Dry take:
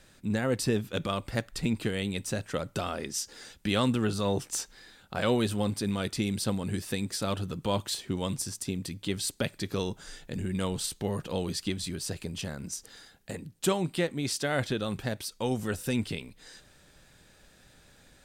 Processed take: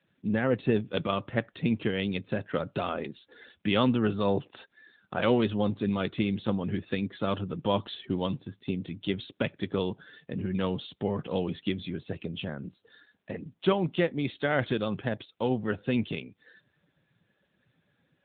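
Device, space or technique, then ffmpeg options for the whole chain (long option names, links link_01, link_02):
mobile call with aggressive noise cancelling: -af "highpass=frequency=110:poles=1,afftdn=noise_reduction=15:noise_floor=-49,volume=3dB" -ar 8000 -c:a libopencore_amrnb -b:a 10200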